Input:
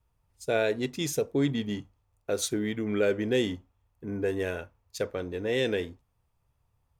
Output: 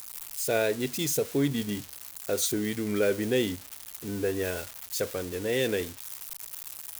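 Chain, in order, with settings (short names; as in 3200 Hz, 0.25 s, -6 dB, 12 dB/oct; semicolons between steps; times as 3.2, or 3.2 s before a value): switching spikes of -26.5 dBFS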